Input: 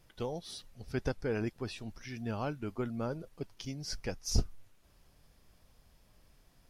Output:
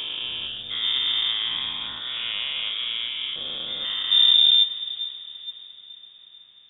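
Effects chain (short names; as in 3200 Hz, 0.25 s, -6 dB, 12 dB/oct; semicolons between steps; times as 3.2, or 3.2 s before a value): spectral dilation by 0.48 s; in parallel at -9 dB: sample-rate reducer 1400 Hz, jitter 0%; on the sum: inverted band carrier 3600 Hz; diffused feedback echo 0.478 s, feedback 46%, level -15 dB; gain -1 dB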